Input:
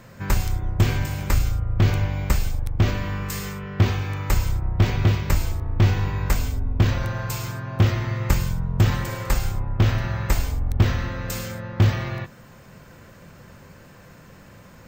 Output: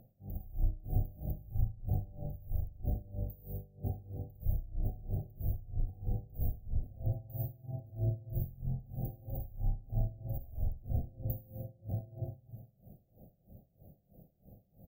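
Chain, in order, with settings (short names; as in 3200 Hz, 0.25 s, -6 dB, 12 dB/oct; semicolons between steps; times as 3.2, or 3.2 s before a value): passive tone stack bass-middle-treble 5-5-5; negative-ratio compressor -35 dBFS, ratio -0.5; brick-wall FIR band-stop 800–13000 Hz; bell 12000 Hz -9 dB 0.86 oct; echo 0.1 s -12 dB; reverb RT60 1.1 s, pre-delay 35 ms, DRR 2 dB; dB-linear tremolo 3.1 Hz, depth 22 dB; gain +5 dB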